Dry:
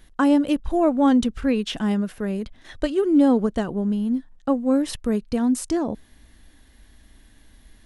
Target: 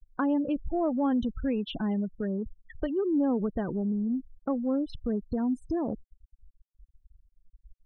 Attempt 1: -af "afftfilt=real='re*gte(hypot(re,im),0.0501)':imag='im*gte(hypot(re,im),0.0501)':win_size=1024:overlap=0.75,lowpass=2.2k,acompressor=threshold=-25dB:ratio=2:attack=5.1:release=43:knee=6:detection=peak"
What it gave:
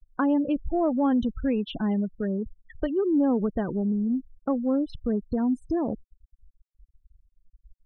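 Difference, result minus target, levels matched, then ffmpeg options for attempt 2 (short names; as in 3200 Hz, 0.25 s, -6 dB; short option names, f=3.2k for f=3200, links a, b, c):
compressor: peak gain reduction -3.5 dB
-af "afftfilt=real='re*gte(hypot(re,im),0.0501)':imag='im*gte(hypot(re,im),0.0501)':win_size=1024:overlap=0.75,lowpass=2.2k,acompressor=threshold=-32dB:ratio=2:attack=5.1:release=43:knee=6:detection=peak"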